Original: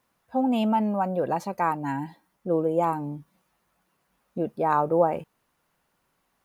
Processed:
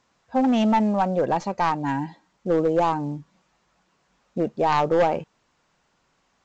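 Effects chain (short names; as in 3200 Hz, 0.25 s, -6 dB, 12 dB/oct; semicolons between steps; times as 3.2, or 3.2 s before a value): tracing distortion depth 0.1 ms; hard clip -18.5 dBFS, distortion -14 dB; gain +4 dB; A-law 128 kbps 16000 Hz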